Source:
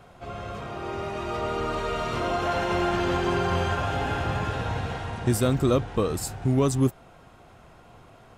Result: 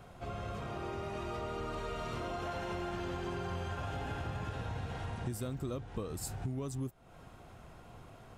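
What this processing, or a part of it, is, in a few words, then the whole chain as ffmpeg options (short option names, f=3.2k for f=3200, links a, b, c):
ASMR close-microphone chain: -af "lowshelf=f=230:g=5,acompressor=threshold=-32dB:ratio=5,highshelf=f=7.7k:g=5,volume=-4.5dB"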